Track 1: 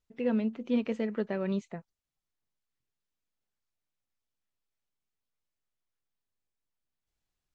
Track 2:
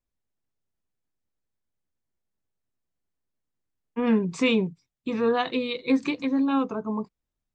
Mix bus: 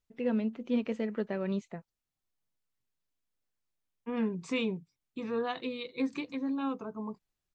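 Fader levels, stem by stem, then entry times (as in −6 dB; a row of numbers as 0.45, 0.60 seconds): −1.5, −9.5 decibels; 0.00, 0.10 seconds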